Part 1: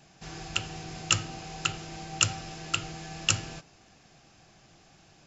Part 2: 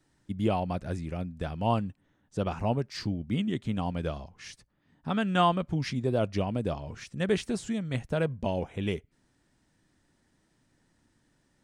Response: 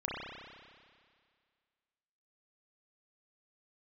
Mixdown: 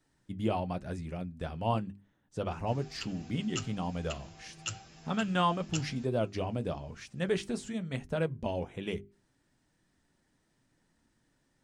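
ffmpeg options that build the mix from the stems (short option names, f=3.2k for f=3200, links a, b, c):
-filter_complex "[0:a]asplit=2[a][b];[b]adelay=8.8,afreqshift=2.7[c];[a][c]amix=inputs=2:normalize=1,adelay=2450,volume=-6dB[d];[1:a]bandreject=f=50:t=h:w=6,bandreject=f=100:t=h:w=6,bandreject=f=150:t=h:w=6,bandreject=f=200:t=h:w=6,bandreject=f=250:t=h:w=6,bandreject=f=300:t=h:w=6,bandreject=f=350:t=h:w=6,bandreject=f=400:t=h:w=6,volume=1dB[e];[d][e]amix=inputs=2:normalize=0,flanger=delay=4.4:depth=3.6:regen=-66:speed=1:shape=sinusoidal"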